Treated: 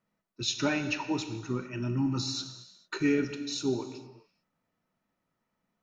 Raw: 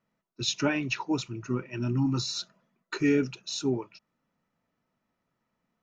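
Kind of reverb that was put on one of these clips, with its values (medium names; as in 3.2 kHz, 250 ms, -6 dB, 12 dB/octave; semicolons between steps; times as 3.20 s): gated-style reverb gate 470 ms falling, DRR 7.5 dB; trim -2 dB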